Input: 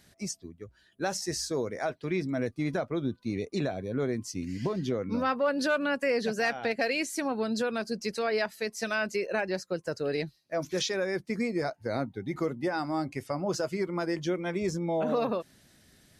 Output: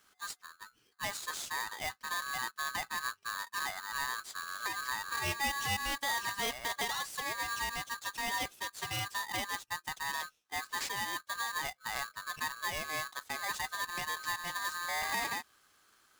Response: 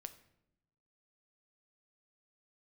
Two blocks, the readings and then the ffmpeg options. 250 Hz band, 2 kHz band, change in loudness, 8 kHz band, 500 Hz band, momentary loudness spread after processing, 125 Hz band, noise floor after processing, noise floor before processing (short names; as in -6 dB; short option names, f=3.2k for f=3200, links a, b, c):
-21.0 dB, -0.5 dB, -5.0 dB, +1.0 dB, -19.0 dB, 7 LU, -13.5 dB, -70 dBFS, -64 dBFS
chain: -af "acrusher=bits=3:mode=log:mix=0:aa=0.000001,aeval=exprs='val(0)*sgn(sin(2*PI*1400*n/s))':c=same,volume=-7dB"